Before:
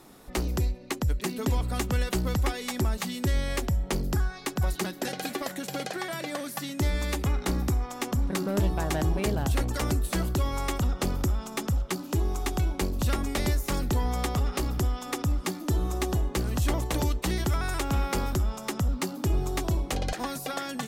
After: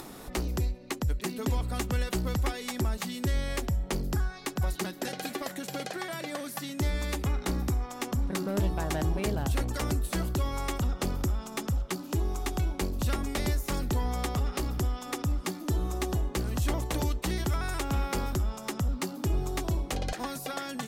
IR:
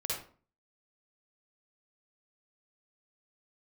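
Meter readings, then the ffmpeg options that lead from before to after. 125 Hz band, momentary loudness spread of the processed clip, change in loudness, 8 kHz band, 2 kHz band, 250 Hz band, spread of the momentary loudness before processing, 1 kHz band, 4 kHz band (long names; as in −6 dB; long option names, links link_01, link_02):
−2.5 dB, 5 LU, −2.5 dB, −2.5 dB, −2.5 dB, −2.5 dB, 5 LU, −2.5 dB, −2.5 dB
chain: -af "acompressor=mode=upward:threshold=-32dB:ratio=2.5,volume=-2.5dB"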